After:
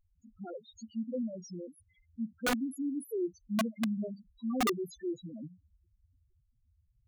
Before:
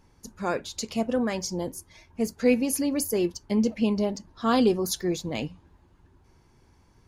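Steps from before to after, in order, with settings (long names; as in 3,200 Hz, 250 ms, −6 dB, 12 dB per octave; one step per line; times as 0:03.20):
spectral peaks only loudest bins 2
wrap-around overflow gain 18 dB
level −6.5 dB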